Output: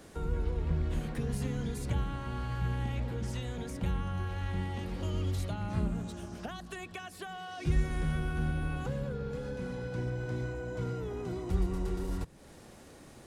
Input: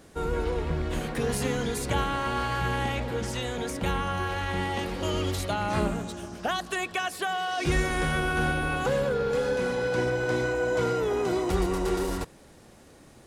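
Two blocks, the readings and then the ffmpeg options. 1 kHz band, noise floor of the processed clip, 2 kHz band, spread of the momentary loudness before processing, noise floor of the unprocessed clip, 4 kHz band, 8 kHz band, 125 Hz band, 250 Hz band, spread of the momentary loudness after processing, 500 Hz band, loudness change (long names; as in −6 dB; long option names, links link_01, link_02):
−14.0 dB, −53 dBFS, −14.0 dB, 5 LU, −53 dBFS, −13.5 dB, −12.5 dB, −1.0 dB, −6.0 dB, 10 LU, −12.5 dB, −7.5 dB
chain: -filter_complex "[0:a]acrossover=split=210[link_01][link_02];[link_02]acompressor=threshold=-46dB:ratio=3[link_03];[link_01][link_03]amix=inputs=2:normalize=0"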